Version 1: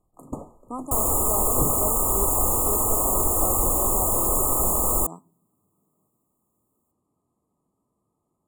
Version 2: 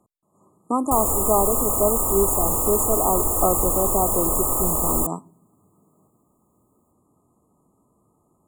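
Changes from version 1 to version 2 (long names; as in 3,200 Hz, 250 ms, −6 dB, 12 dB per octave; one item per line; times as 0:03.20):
speech +11.5 dB
first sound: muted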